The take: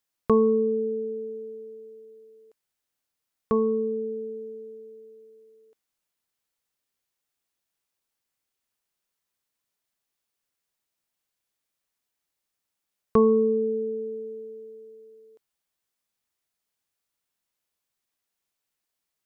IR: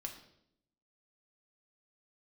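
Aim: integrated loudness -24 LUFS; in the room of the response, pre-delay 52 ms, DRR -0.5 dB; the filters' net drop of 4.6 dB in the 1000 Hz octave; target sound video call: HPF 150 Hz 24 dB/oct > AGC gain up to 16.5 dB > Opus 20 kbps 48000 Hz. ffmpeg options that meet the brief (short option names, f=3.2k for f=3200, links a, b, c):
-filter_complex "[0:a]equalizer=f=1k:t=o:g=-5,asplit=2[a][b];[1:a]atrim=start_sample=2205,adelay=52[c];[b][c]afir=irnorm=-1:irlink=0,volume=3dB[d];[a][d]amix=inputs=2:normalize=0,highpass=f=150:w=0.5412,highpass=f=150:w=1.3066,dynaudnorm=m=16.5dB,volume=-3.5dB" -ar 48000 -c:a libopus -b:a 20k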